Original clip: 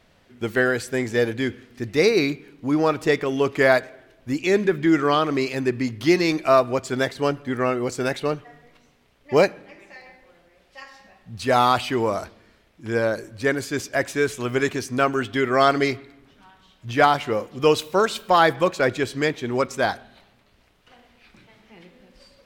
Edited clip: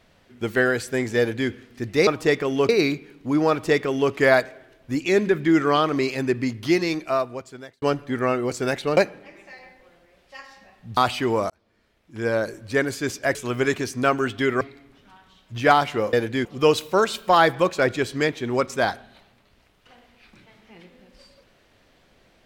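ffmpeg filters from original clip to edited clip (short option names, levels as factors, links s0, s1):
-filter_complex "[0:a]asplit=11[s0][s1][s2][s3][s4][s5][s6][s7][s8][s9][s10];[s0]atrim=end=2.072[s11];[s1]atrim=start=2.878:end=3.502[s12];[s2]atrim=start=2.068:end=7.2,asetpts=PTS-STARTPTS,afade=t=out:st=3.732:d=1.4[s13];[s3]atrim=start=7.2:end=8.352,asetpts=PTS-STARTPTS,afade=t=in:d=0.004:c=hsin[s14];[s4]atrim=start=9.398:end=11.402[s15];[s5]atrim=start=11.668:end=12.2,asetpts=PTS-STARTPTS,afade=t=out:st=0.528:d=0.004:c=hsin[s16];[s6]atrim=start=12.2:end=14.052,asetpts=PTS-STARTPTS,afade=t=in:d=0.94[s17];[s7]atrim=start=14.298:end=15.562[s18];[s8]atrim=start=15.938:end=17.462[s19];[s9]atrim=start=1.178:end=1.502[s20];[s10]atrim=start=17.458[s21];[s11][s12]acrossfade=d=0.004:c1=hsin:c2=hsin[s22];[s13][s14]concat=n=2:v=0:a=1[s23];[s22][s23]acrossfade=d=0.004:c1=hsin:c2=hsin[s24];[s24][s15]acrossfade=d=0.004:c1=hsin:c2=hsin[s25];[s16][s17]concat=n=2:v=0:a=1[s26];[s25][s26]acrossfade=d=0.004:c1=hsin:c2=hsin[s27];[s27][s18]acrossfade=d=0.004:c1=hsin:c2=hsin[s28];[s28][s19]acrossfade=d=0.004:c1=hsin:c2=hsin[s29];[s29][s20]acrossfade=d=0.004:c1=hsin:c2=hsin[s30];[s30][s21]acrossfade=d=0.004:c1=hsin:c2=hsin"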